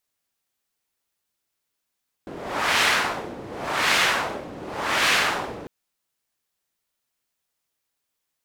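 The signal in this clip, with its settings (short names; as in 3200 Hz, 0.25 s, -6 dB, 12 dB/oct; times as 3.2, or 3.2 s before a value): wind-like swept noise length 3.40 s, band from 370 Hz, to 2200 Hz, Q 1, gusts 3, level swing 18 dB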